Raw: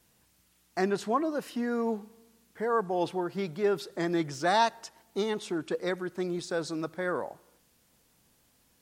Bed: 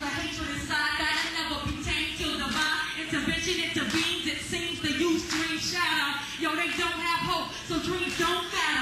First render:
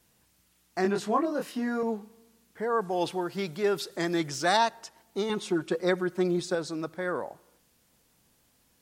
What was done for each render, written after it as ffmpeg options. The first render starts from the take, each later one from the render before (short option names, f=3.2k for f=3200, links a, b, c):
-filter_complex "[0:a]asettb=1/sr,asplit=3[a][b][c];[a]atrim=end=0.824[d];[b]atrim=start=0.82:end=1.83,asetpts=PTS-STARTPTS,afade=t=in:d=0.004:c=qsin,afade=t=out:st=1.006:d=0.004:c=qsin,asplit=2[e][f];[f]adelay=24,volume=-3dB[g];[e][g]amix=inputs=2:normalize=0,atrim=end_sample=44541[h];[c]atrim=start=1.826[i];[d][h]acrossfade=d=0.004:c1=hsin:c2=qsin[j];[j][i]acrossfade=d=0.004:c1=qsin:c2=hsin,asettb=1/sr,asplit=3[k][l][m];[k]atrim=end=2.814[n];[l]atrim=start=2.81:end=4.57,asetpts=PTS-STARTPTS,afade=t=in:d=0.004:c=qsin,afade=t=out:st=1.756:d=0.004:c=qsin,highshelf=f=2.1k:g=7.5[o];[m]atrim=start=4.566[p];[n][o]acrossfade=d=0.004:c1=hsin:c2=qsin[q];[q][p]acrossfade=d=0.004:c1=qsin:c2=hsin,asettb=1/sr,asplit=3[r][s][t];[r]atrim=end=5.294[u];[s]atrim=start=5.29:end=6.55,asetpts=PTS-STARTPTS,afade=t=in:d=0.004:c=qsin,afade=t=out:st=1.256:d=0.004:c=qsin,aecho=1:1:5.5:0.98,atrim=end_sample=55566[v];[t]atrim=start=6.546[w];[u][v]acrossfade=d=0.004:c1=hsin:c2=qsin[x];[x][w]acrossfade=d=0.004:c1=qsin:c2=hsin"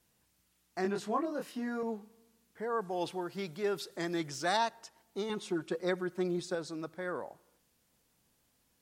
-af "volume=-6.5dB"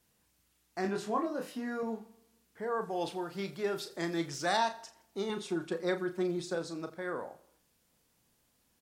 -filter_complex "[0:a]asplit=2[a][b];[b]adelay=36,volume=-8.5dB[c];[a][c]amix=inputs=2:normalize=0,aecho=1:1:83|166|249:0.112|0.046|0.0189"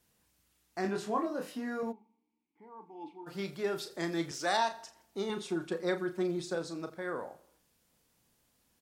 -filter_complex "[0:a]asplit=3[a][b][c];[a]afade=t=out:st=1.91:d=0.02[d];[b]asplit=3[e][f][g];[e]bandpass=f=300:t=q:w=8,volume=0dB[h];[f]bandpass=f=870:t=q:w=8,volume=-6dB[i];[g]bandpass=f=2.24k:t=q:w=8,volume=-9dB[j];[h][i][j]amix=inputs=3:normalize=0,afade=t=in:st=1.91:d=0.02,afade=t=out:st=3.26:d=0.02[k];[c]afade=t=in:st=3.26:d=0.02[l];[d][k][l]amix=inputs=3:normalize=0,asettb=1/sr,asplit=3[m][n][o];[m]atrim=end=4.314[p];[n]atrim=start=4.31:end=4.72,asetpts=PTS-STARTPTS,afade=t=in:d=0.004:c=qsin,afade=t=out:st=0.406:d=0.004:c=qsin,highpass=240[q];[o]atrim=start=4.716[r];[p][q]acrossfade=d=0.004:c1=hsin:c2=qsin[s];[s][r]acrossfade=d=0.004:c1=qsin:c2=hsin"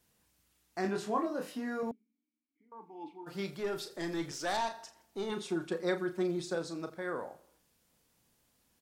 -filter_complex "[0:a]asettb=1/sr,asplit=3[a][b][c];[a]atrim=end=1.914[d];[b]atrim=start=1.91:end=2.72,asetpts=PTS-STARTPTS,afade=t=in:d=0.004:c=qsin,afade=t=out:st=0.806:d=0.004:c=qsin,asplit=3[e][f][g];[e]bandpass=f=270:t=q:w=8,volume=0dB[h];[f]bandpass=f=2.29k:t=q:w=8,volume=-6dB[i];[g]bandpass=f=3.01k:t=q:w=8,volume=-9dB[j];[h][i][j]amix=inputs=3:normalize=0[k];[c]atrim=start=2.716[l];[d][k]acrossfade=d=0.004:c1=hsin:c2=qsin[m];[m][l]acrossfade=d=0.004:c1=qsin:c2=hsin,asettb=1/sr,asplit=3[n][o][p];[n]atrim=end=3.594[q];[o]atrim=start=3.59:end=5.32,asetpts=PTS-STARTPTS,afade=t=in:d=0.004:c=qsin,afade=t=out:st=1.726:d=0.004:c=qsin,aeval=exprs='(tanh(22.4*val(0)+0.25)-tanh(0.25))/22.4':c=same[r];[p]atrim=start=5.316[s];[q][r]acrossfade=d=0.004:c1=hsin:c2=qsin[t];[t][s]acrossfade=d=0.004:c1=qsin:c2=hsin"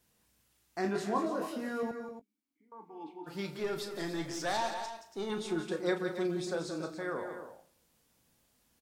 -filter_complex "[0:a]asplit=2[a][b];[b]adelay=19,volume=-13dB[c];[a][c]amix=inputs=2:normalize=0,aecho=1:1:174.9|282.8:0.355|0.282"